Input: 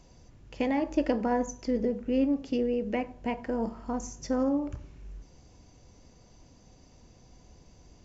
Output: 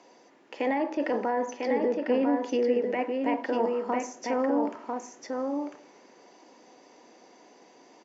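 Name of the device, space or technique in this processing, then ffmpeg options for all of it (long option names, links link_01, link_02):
laptop speaker: -filter_complex "[0:a]highpass=150,highpass=frequency=290:width=0.5412,highpass=frequency=290:width=1.3066,aemphasis=mode=reproduction:type=50fm,equalizer=frequency=890:width_type=o:width=0.4:gain=4.5,equalizer=frequency=1900:width_type=o:width=0.4:gain=5,alimiter=level_in=1.5dB:limit=-24dB:level=0:latency=1:release=10,volume=-1.5dB,asettb=1/sr,asplit=3[link_01][link_02][link_03];[link_01]atrim=end=0.754[link_04];[link_02]atrim=start=0.75:end=2.49,asetpts=PTS-STARTPTS,afade=type=in:duration=0.004:curve=qsin,afade=type=out:start_time=1.736:duration=0.004:curve=qsin,lowpass=frequency=5900:width=0.5412,lowpass=frequency=5900:width=1.3066[link_05];[link_03]atrim=start=2.486[link_06];[link_04][link_05]acrossfade=duration=0.004:curve1=hsin:curve2=qsin[link_07];[link_07][link_06]acrossfade=duration=0.004:curve1=qsin:curve2=hsin,aecho=1:1:998:0.631,volume=6dB"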